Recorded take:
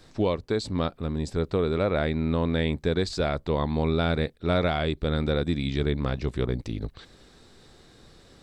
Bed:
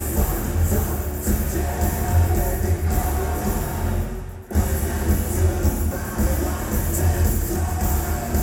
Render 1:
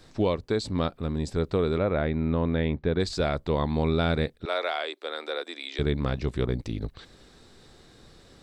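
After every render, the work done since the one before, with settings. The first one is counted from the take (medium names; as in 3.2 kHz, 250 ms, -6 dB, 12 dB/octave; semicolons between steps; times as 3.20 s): 1.78–3.00 s: distance through air 290 m; 4.45–5.79 s: Bessel high-pass 630 Hz, order 8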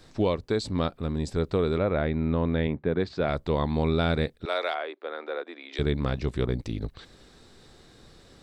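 2.67–3.29 s: band-pass 110–2500 Hz; 4.74–5.73 s: low-pass 1.9 kHz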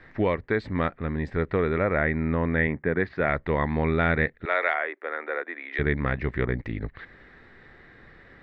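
resonant low-pass 1.9 kHz, resonance Q 6.3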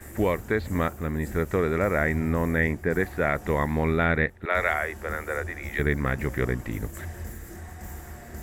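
add bed -18 dB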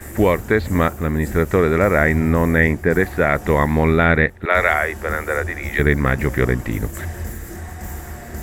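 trim +8.5 dB; peak limiter -2 dBFS, peak gain reduction 2 dB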